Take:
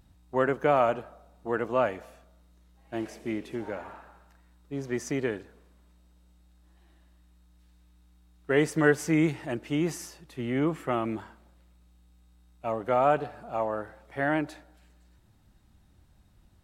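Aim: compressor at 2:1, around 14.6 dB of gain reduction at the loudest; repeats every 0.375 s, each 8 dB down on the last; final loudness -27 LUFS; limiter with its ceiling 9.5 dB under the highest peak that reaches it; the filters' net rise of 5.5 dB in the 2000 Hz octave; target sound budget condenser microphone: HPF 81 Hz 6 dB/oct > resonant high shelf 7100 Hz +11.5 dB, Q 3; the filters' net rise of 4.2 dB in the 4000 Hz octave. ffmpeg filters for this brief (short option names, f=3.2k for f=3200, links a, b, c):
-af "equalizer=f=2k:t=o:g=6.5,equalizer=f=4k:t=o:g=7,acompressor=threshold=-41dB:ratio=2,alimiter=level_in=5.5dB:limit=-24dB:level=0:latency=1,volume=-5.5dB,highpass=f=81:p=1,highshelf=f=7.1k:t=q:w=3:g=11.5,aecho=1:1:375|750|1125|1500|1875:0.398|0.159|0.0637|0.0255|0.0102,volume=13.5dB"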